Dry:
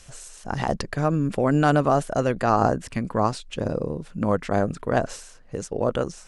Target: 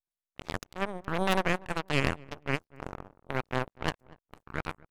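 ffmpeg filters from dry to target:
-filter_complex "[0:a]aeval=exprs='abs(val(0))':c=same,asetrate=56448,aresample=44100,aeval=exprs='0.562*(cos(1*acos(clip(val(0)/0.562,-1,1)))-cos(1*PI/2))+0.126*(cos(3*acos(clip(val(0)/0.562,-1,1)))-cos(3*PI/2))+0.0631*(cos(5*acos(clip(val(0)/0.562,-1,1)))-cos(5*PI/2))+0.0708*(cos(7*acos(clip(val(0)/0.562,-1,1)))-cos(7*PI/2))+0.00794*(cos(8*acos(clip(val(0)/0.562,-1,1)))-cos(8*PI/2))':c=same,asplit=2[a][b];[b]adelay=242,lowpass=f=1.1k:p=1,volume=-21dB,asplit=2[c][d];[d]adelay=242,lowpass=f=1.1k:p=1,volume=0.31[e];[c][e]amix=inputs=2:normalize=0[f];[a][f]amix=inputs=2:normalize=0,volume=-2.5dB"

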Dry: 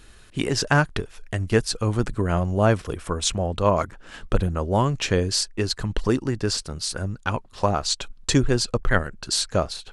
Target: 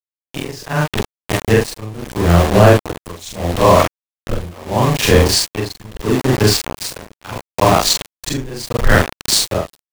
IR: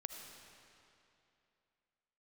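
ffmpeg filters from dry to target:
-af "afftfilt=real='re':imag='-im':win_size=4096:overlap=0.75,aeval=exprs='val(0)*gte(abs(val(0)),0.0335)':c=same,equalizer=f=1.4k:t=o:w=0.3:g=-5,tremolo=f=0.76:d=0.92,apsyclip=19.5dB,adynamicequalizer=threshold=0.0398:dfrequency=3600:dqfactor=0.7:tfrequency=3600:tqfactor=0.7:attack=5:release=100:ratio=0.375:range=2:mode=cutabove:tftype=highshelf,volume=-1.5dB"

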